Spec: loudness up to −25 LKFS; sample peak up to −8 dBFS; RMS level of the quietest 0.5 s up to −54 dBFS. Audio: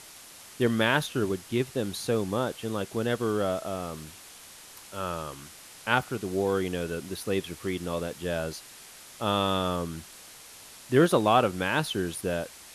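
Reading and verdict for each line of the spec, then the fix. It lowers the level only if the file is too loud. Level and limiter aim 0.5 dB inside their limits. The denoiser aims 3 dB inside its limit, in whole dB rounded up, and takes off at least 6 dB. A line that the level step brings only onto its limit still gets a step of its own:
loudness −28.5 LKFS: in spec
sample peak −7.0 dBFS: out of spec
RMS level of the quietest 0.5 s −48 dBFS: out of spec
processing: broadband denoise 9 dB, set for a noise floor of −48 dBFS
brickwall limiter −8.5 dBFS

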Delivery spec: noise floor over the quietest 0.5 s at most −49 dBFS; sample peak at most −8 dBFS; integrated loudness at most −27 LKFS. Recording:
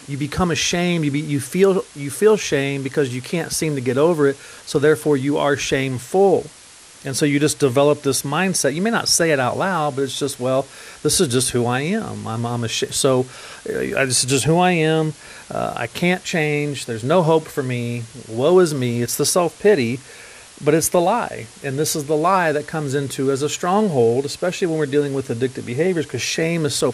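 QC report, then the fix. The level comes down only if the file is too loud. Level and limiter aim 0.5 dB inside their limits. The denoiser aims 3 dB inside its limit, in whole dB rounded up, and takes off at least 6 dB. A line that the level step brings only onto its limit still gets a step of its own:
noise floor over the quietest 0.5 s −44 dBFS: out of spec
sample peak −3.5 dBFS: out of spec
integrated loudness −19.0 LKFS: out of spec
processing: level −8.5 dB

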